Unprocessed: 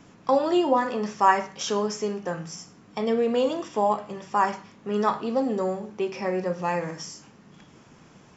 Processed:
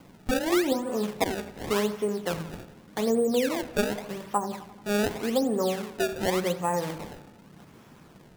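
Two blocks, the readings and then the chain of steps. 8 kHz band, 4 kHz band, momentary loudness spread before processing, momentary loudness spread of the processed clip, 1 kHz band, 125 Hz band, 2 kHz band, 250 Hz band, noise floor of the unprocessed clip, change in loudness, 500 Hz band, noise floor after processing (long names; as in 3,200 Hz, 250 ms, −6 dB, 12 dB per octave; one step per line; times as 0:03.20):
can't be measured, +1.5 dB, 13 LU, 12 LU, −8.0 dB, +1.0 dB, −0.5 dB, 0.0 dB, −53 dBFS, −2.5 dB, −1.5 dB, −53 dBFS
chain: treble cut that deepens with the level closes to 390 Hz, closed at −18 dBFS
sample-and-hold swept by an LFO 24×, swing 160% 0.86 Hz
delay with a low-pass on its return 87 ms, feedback 63%, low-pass 3,300 Hz, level −16 dB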